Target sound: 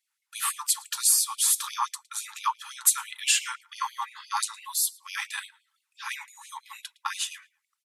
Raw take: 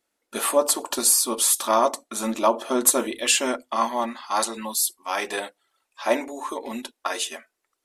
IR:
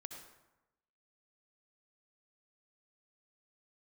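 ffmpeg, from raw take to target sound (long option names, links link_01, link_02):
-filter_complex "[0:a]asplit=2[link_01][link_02];[link_02]adelay=111,lowpass=frequency=4800:poles=1,volume=-20.5dB,asplit=2[link_03][link_04];[link_04]adelay=111,lowpass=frequency=4800:poles=1,volume=0.21[link_05];[link_01][link_03][link_05]amix=inputs=3:normalize=0,afftfilt=real='re*gte(b*sr/1024,780*pow(2200/780,0.5+0.5*sin(2*PI*5.9*pts/sr)))':imag='im*gte(b*sr/1024,780*pow(2200/780,0.5+0.5*sin(2*PI*5.9*pts/sr)))':win_size=1024:overlap=0.75,volume=-2.5dB"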